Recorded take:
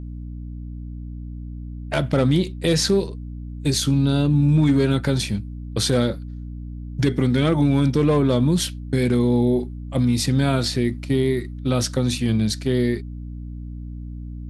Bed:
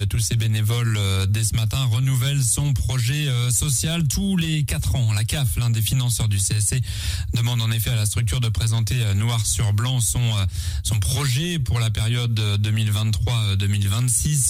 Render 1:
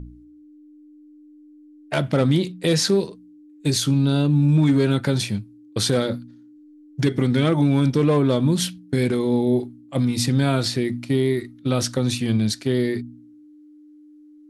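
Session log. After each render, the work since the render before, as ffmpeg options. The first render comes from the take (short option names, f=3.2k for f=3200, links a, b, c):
-af "bandreject=f=60:t=h:w=4,bandreject=f=120:t=h:w=4,bandreject=f=180:t=h:w=4,bandreject=f=240:t=h:w=4"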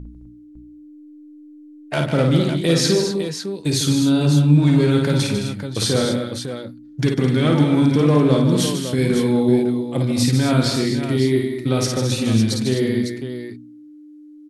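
-af "aecho=1:1:54|148|213|254|554:0.631|0.398|0.316|0.316|0.376"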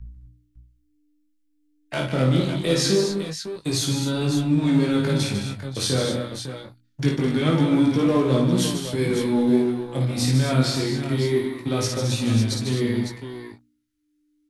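-filter_complex "[0:a]acrossover=split=150|1300|2200[a][b][c][d];[b]aeval=exprs='sgn(val(0))*max(abs(val(0))-0.0178,0)':c=same[e];[a][e][c][d]amix=inputs=4:normalize=0,flanger=delay=16.5:depth=6.8:speed=0.24"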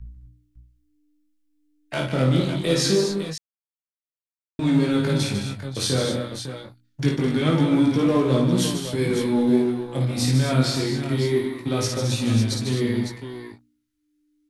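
-filter_complex "[0:a]asplit=3[a][b][c];[a]atrim=end=3.38,asetpts=PTS-STARTPTS,afade=t=out:st=3.376:d=0.004:c=hsin[d];[b]atrim=start=3.38:end=4.59,asetpts=PTS-STARTPTS,volume=0[e];[c]atrim=start=4.59,asetpts=PTS-STARTPTS,afade=t=in:d=0.004:c=hsin[f];[d][e][f]concat=n=3:v=0:a=1"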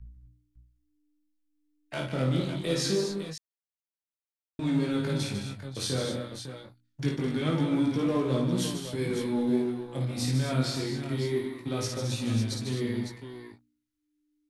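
-af "volume=-7.5dB"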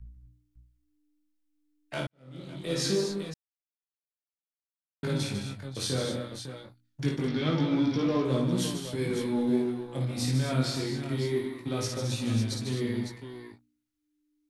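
-filter_complex "[0:a]asettb=1/sr,asplit=3[a][b][c];[a]atrim=end=7.284[d];[b]atrim=start=7.28:end=8.25,asetpts=PTS-STARTPTS,afade=t=in:d=0.004:c=qsin,afade=t=out:st=0.966:d=0.004:c=qsin,highshelf=f=6.7k:t=q:w=3:g=-9[e];[c]atrim=start=8.246[f];[d][e]acrossfade=d=0.004:c1=hsin:c2=qsin[g];[g][f]acrossfade=d=0.004:c1=qsin:c2=hsin,asplit=4[h][i][j][k];[h]atrim=end=2.07,asetpts=PTS-STARTPTS,afade=t=out:st=2.066:d=0.004:c=hsin[l];[i]atrim=start=2.07:end=3.34,asetpts=PTS-STARTPTS,afade=t=in:d=0.76:c=qua,afade=t=out:st=1.266:d=0.004:c=hsin[m];[j]atrim=start=3.34:end=5.03,asetpts=PTS-STARTPTS,volume=0[n];[k]atrim=start=5.03,asetpts=PTS-STARTPTS,afade=t=in:d=0.004:c=hsin[o];[l][m][n][o]concat=n=4:v=0:a=1"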